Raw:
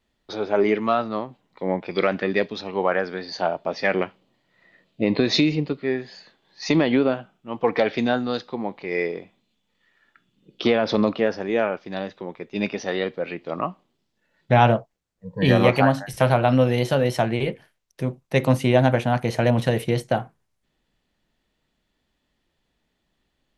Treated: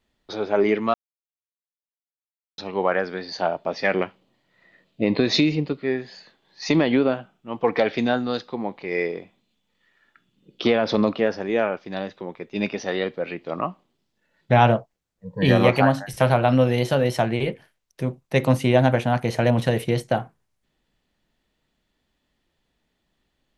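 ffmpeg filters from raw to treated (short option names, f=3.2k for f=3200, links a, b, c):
-filter_complex "[0:a]asplit=3[a][b][c];[a]atrim=end=0.94,asetpts=PTS-STARTPTS,afade=t=out:st=0.936:d=0.004:c=hsin[d];[b]atrim=start=0.94:end=2.58,asetpts=PTS-STARTPTS,volume=0[e];[c]atrim=start=2.58,asetpts=PTS-STARTPTS,afade=t=in:d=0.004:c=hsin[f];[d][e][f]concat=n=3:v=0:a=1"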